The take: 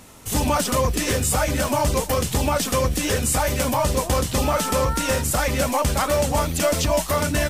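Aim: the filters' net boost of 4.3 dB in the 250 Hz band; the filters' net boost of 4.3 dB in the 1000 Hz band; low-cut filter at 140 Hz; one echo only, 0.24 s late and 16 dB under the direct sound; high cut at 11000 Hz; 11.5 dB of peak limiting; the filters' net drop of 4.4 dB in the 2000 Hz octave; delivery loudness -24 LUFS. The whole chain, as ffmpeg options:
-af "highpass=140,lowpass=11k,equalizer=f=250:t=o:g=5.5,equalizer=f=1k:t=o:g=7,equalizer=f=2k:t=o:g=-9,alimiter=limit=-17dB:level=0:latency=1,aecho=1:1:240:0.158,volume=1.5dB"

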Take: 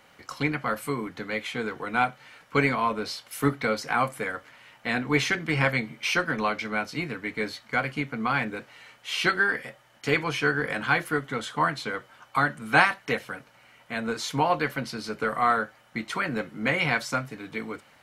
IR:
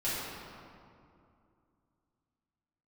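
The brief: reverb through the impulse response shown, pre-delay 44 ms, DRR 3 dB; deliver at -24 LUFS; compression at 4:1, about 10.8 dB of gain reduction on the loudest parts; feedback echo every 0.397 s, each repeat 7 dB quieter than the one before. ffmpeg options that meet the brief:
-filter_complex "[0:a]acompressor=threshold=-27dB:ratio=4,aecho=1:1:397|794|1191|1588|1985:0.447|0.201|0.0905|0.0407|0.0183,asplit=2[a][b];[1:a]atrim=start_sample=2205,adelay=44[c];[b][c]afir=irnorm=-1:irlink=0,volume=-10.5dB[d];[a][d]amix=inputs=2:normalize=0,volume=5.5dB"

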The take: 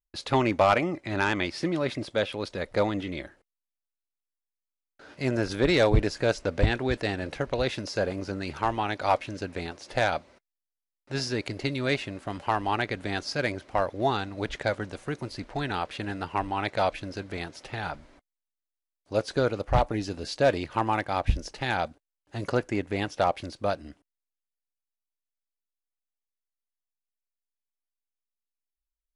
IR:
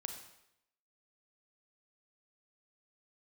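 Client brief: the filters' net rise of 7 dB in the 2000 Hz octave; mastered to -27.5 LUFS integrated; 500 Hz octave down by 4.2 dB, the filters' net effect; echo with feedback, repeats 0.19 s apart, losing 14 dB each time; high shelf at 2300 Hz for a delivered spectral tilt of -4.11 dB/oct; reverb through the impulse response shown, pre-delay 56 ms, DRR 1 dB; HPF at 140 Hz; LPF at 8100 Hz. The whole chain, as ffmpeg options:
-filter_complex "[0:a]highpass=140,lowpass=8.1k,equalizer=f=500:t=o:g=-6,equalizer=f=2k:t=o:g=7.5,highshelf=f=2.3k:g=3.5,aecho=1:1:190|380:0.2|0.0399,asplit=2[a][b];[1:a]atrim=start_sample=2205,adelay=56[c];[b][c]afir=irnorm=-1:irlink=0,volume=1dB[d];[a][d]amix=inputs=2:normalize=0,volume=-2.5dB"

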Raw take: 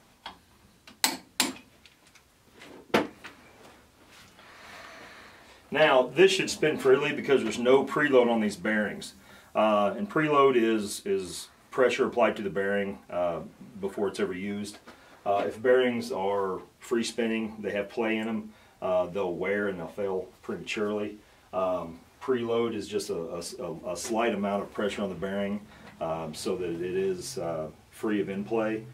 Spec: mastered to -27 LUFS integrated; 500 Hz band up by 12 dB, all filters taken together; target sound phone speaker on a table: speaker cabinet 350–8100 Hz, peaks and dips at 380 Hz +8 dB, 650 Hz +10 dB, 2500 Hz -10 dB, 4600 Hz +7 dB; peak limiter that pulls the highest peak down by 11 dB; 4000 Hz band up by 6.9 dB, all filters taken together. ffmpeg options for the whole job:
-af "equalizer=f=500:t=o:g=7.5,equalizer=f=4k:t=o:g=7,alimiter=limit=-11dB:level=0:latency=1,highpass=f=350:w=0.5412,highpass=f=350:w=1.3066,equalizer=f=380:t=q:w=4:g=8,equalizer=f=650:t=q:w=4:g=10,equalizer=f=2.5k:t=q:w=4:g=-10,equalizer=f=4.6k:t=q:w=4:g=7,lowpass=f=8.1k:w=0.5412,lowpass=f=8.1k:w=1.3066,volume=-7.5dB"

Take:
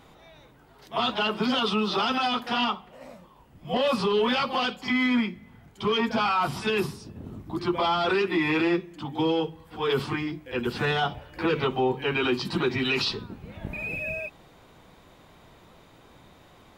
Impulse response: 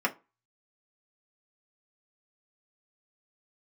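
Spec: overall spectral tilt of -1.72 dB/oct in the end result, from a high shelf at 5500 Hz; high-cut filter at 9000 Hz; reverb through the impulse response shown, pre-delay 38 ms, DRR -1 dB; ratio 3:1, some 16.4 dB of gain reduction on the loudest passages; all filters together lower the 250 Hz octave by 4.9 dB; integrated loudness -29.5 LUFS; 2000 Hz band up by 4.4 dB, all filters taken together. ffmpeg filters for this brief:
-filter_complex "[0:a]lowpass=9k,equalizer=f=250:t=o:g=-6.5,equalizer=f=2k:t=o:g=4.5,highshelf=f=5.5k:g=8.5,acompressor=threshold=-43dB:ratio=3,asplit=2[a][b];[1:a]atrim=start_sample=2205,adelay=38[c];[b][c]afir=irnorm=-1:irlink=0,volume=-9.5dB[d];[a][d]amix=inputs=2:normalize=0,volume=7.5dB"

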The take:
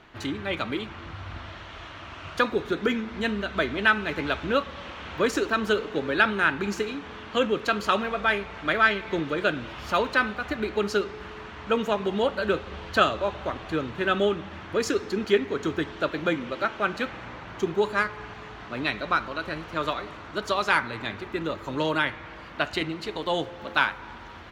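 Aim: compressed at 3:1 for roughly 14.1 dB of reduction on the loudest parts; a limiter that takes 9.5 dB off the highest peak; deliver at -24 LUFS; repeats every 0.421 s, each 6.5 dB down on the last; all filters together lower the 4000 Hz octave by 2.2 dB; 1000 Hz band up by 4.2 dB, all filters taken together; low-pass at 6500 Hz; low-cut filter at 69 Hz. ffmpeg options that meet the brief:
-af "highpass=69,lowpass=6.5k,equalizer=f=1k:t=o:g=6,equalizer=f=4k:t=o:g=-3,acompressor=threshold=-33dB:ratio=3,alimiter=level_in=1.5dB:limit=-24dB:level=0:latency=1,volume=-1.5dB,aecho=1:1:421|842|1263|1684|2105|2526:0.473|0.222|0.105|0.0491|0.0231|0.0109,volume=12dB"

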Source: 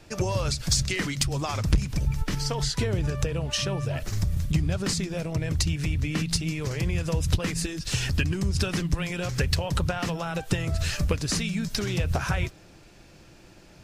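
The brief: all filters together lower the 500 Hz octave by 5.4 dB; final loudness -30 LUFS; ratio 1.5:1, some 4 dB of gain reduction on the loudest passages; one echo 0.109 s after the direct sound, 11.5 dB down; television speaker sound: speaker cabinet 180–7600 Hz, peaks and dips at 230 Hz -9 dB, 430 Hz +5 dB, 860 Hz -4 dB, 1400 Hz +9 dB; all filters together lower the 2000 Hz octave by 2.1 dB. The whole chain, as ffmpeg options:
-af "equalizer=f=500:t=o:g=-9,equalizer=f=2k:t=o:g=-6,acompressor=threshold=-29dB:ratio=1.5,highpass=f=180:w=0.5412,highpass=f=180:w=1.3066,equalizer=f=230:t=q:w=4:g=-9,equalizer=f=430:t=q:w=4:g=5,equalizer=f=860:t=q:w=4:g=-4,equalizer=f=1.4k:t=q:w=4:g=9,lowpass=f=7.6k:w=0.5412,lowpass=f=7.6k:w=1.3066,aecho=1:1:109:0.266,volume=4.5dB"

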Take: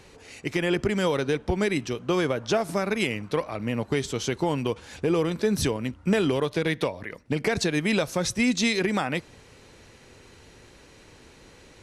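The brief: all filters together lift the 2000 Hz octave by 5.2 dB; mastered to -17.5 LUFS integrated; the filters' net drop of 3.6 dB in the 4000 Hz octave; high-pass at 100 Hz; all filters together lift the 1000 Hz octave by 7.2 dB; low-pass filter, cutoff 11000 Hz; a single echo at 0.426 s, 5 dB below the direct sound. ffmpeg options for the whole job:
-af "highpass=100,lowpass=11k,equalizer=f=1k:t=o:g=8,equalizer=f=2k:t=o:g=6,equalizer=f=4k:t=o:g=-7.5,aecho=1:1:426:0.562,volume=5.5dB"

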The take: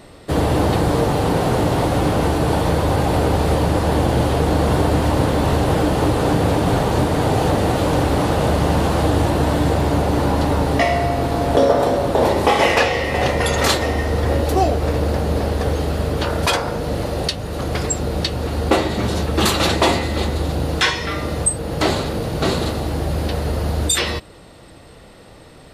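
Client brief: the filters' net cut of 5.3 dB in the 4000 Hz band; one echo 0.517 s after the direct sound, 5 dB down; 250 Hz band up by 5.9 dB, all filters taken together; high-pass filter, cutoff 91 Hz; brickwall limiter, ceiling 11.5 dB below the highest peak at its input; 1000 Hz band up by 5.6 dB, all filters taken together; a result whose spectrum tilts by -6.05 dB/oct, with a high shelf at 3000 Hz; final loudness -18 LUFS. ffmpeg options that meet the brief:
-af "highpass=91,equalizer=f=250:t=o:g=7.5,equalizer=f=1k:t=o:g=7.5,highshelf=f=3k:g=-3.5,equalizer=f=4k:t=o:g=-4.5,alimiter=limit=-9dB:level=0:latency=1,aecho=1:1:517:0.562,volume=-0.5dB"

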